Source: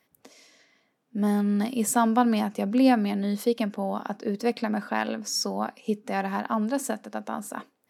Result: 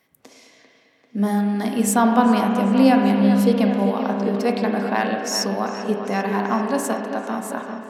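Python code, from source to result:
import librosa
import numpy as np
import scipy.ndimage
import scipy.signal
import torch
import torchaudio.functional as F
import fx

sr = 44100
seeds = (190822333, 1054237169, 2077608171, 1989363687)

y = fx.echo_wet_lowpass(x, sr, ms=393, feedback_pct=62, hz=3700.0, wet_db=-9)
y = fx.rev_spring(y, sr, rt60_s=1.9, pass_ms=(30, 35), chirp_ms=50, drr_db=3.0)
y = F.gain(torch.from_numpy(y), 4.0).numpy()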